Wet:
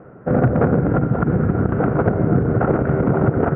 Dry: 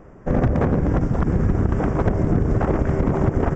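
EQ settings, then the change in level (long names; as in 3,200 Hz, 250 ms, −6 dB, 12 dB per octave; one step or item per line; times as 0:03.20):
loudspeaker in its box 120–2,900 Hz, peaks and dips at 130 Hz +4 dB, 480 Hz +5 dB, 720 Hz +5 dB, 1,400 Hz +8 dB
tilt shelving filter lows +4 dB, about 660 Hz
parametric band 1,400 Hz +5.5 dB 0.2 octaves
0.0 dB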